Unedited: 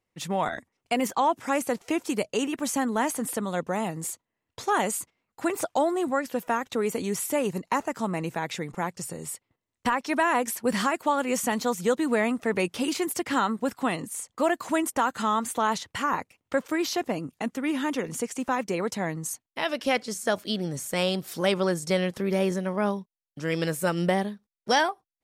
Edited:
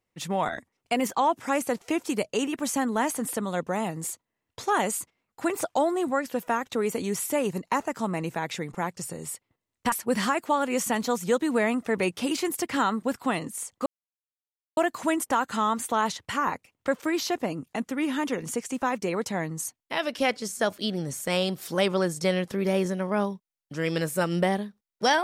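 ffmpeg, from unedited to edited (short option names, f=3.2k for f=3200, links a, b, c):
-filter_complex "[0:a]asplit=3[a][b][c];[a]atrim=end=9.922[d];[b]atrim=start=10.488:end=14.43,asetpts=PTS-STARTPTS,afade=t=out:st=3.938:d=0.004:c=hsin,apad=pad_dur=0.91[e];[c]atrim=start=14.43,asetpts=PTS-STARTPTS,afade=t=in:d=0.004:c=hsin[f];[e][f]concat=n=2:v=0:a=1[g];[d][g]acrossfade=d=0.004:c1=hsin:c2=hsin"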